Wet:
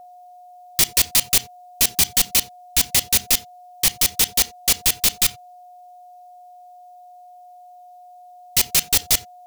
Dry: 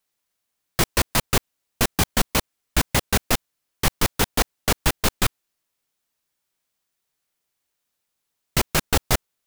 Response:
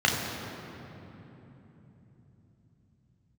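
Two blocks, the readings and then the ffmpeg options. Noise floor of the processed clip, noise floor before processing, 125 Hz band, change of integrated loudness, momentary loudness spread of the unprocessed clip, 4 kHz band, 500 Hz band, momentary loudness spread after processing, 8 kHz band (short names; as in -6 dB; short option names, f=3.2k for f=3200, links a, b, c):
-45 dBFS, -79 dBFS, -9.5 dB, +5.5 dB, 4 LU, +5.5 dB, -7.5 dB, 5 LU, +8.5 dB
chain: -filter_complex "[0:a]aexciter=amount=5.7:drive=4.5:freq=2.1k,aeval=exprs='val(0)+0.0224*sin(2*PI*720*n/s)':c=same,asplit=2[a][b];[1:a]atrim=start_sample=2205,afade=t=out:st=0.14:d=0.01,atrim=end_sample=6615[c];[b][c]afir=irnorm=-1:irlink=0,volume=-27dB[d];[a][d]amix=inputs=2:normalize=0,volume=-9dB"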